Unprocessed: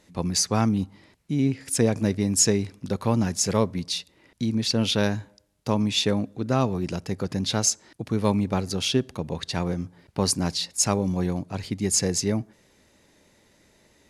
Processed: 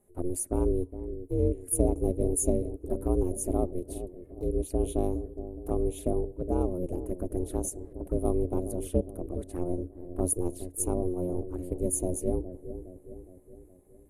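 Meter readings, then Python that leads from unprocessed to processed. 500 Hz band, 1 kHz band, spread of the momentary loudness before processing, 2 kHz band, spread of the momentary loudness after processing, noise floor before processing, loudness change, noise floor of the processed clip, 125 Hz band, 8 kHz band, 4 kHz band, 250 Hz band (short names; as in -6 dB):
-1.5 dB, -10.0 dB, 9 LU, under -25 dB, 12 LU, -61 dBFS, -6.0 dB, -55 dBFS, -7.0 dB, -9.0 dB, under -30 dB, -6.5 dB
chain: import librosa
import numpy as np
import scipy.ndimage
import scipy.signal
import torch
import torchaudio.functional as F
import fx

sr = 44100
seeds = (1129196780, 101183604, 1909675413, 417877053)

p1 = fx.curve_eq(x, sr, hz=(370.0, 5200.0, 9800.0), db=(0, -30, 7))
p2 = fx.env_flanger(p1, sr, rest_ms=5.0, full_db=-23.5)
p3 = p2 + fx.echo_wet_lowpass(p2, sr, ms=414, feedback_pct=53, hz=460.0, wet_db=-10.5, dry=0)
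y = p3 * np.sin(2.0 * np.pi * 180.0 * np.arange(len(p3)) / sr)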